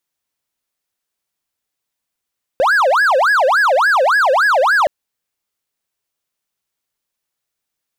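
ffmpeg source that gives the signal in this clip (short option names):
-f lavfi -i "aevalsrc='0.398*(1-4*abs(mod((1099.5*t-590.5/(2*PI*3.5)*sin(2*PI*3.5*t))+0.25,1)-0.5))':d=2.27:s=44100"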